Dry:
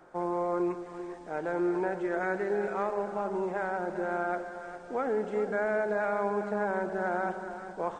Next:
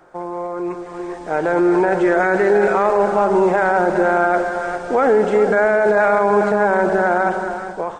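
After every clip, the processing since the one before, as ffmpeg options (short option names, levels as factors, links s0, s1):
-af "alimiter=level_in=1.12:limit=0.0631:level=0:latency=1:release=23,volume=0.891,equalizer=f=230:w=1.4:g=-3.5,dynaudnorm=f=490:g=5:m=3.98,volume=2.24"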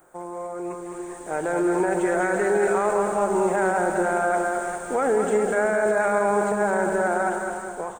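-af "aexciter=amount=13.5:drive=4.6:freq=7500,aecho=1:1:210:0.501,volume=0.422"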